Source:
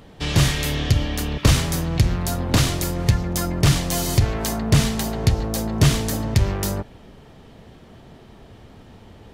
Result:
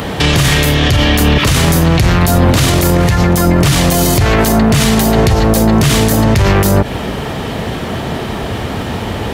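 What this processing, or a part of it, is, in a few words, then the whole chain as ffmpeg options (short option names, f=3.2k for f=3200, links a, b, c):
mastering chain: -filter_complex "[0:a]highpass=49,equalizer=f=5.3k:t=o:w=1.6:g=-4,acrossover=split=650|1500[a][b][c];[a]acompressor=threshold=-22dB:ratio=4[d];[b]acompressor=threshold=-42dB:ratio=4[e];[c]acompressor=threshold=-36dB:ratio=4[f];[d][e][f]amix=inputs=3:normalize=0,acompressor=threshold=-30dB:ratio=1.5,tiltshelf=f=730:g=-3,alimiter=level_in=29dB:limit=-1dB:release=50:level=0:latency=1,volume=-1dB"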